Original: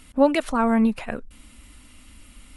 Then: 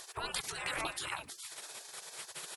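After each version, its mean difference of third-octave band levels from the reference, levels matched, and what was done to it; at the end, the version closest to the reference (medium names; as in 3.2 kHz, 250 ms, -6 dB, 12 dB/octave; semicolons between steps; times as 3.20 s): 18.5 dB: delay 317 ms -11.5 dB; compression 2.5:1, threshold -28 dBFS, peak gain reduction 11 dB; spectral gate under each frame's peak -30 dB weak; trim +14 dB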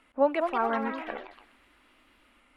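6.5 dB: three-band isolator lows -21 dB, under 330 Hz, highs -21 dB, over 2.5 kHz; ever faster or slower copies 244 ms, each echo +3 st, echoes 3, each echo -6 dB; feedback echo behind a high-pass 129 ms, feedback 54%, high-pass 1.6 kHz, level -15 dB; trim -4 dB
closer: second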